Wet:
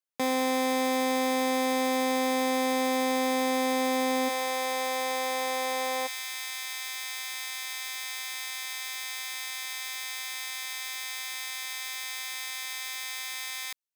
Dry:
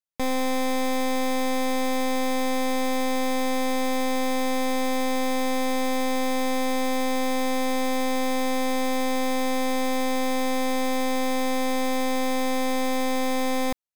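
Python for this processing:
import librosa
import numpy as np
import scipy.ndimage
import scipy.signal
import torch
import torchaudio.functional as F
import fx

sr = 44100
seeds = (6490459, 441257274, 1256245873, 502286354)

y = fx.bessel_highpass(x, sr, hz=fx.steps((0.0, 220.0), (4.28, 590.0), (6.06, 2100.0)), order=4)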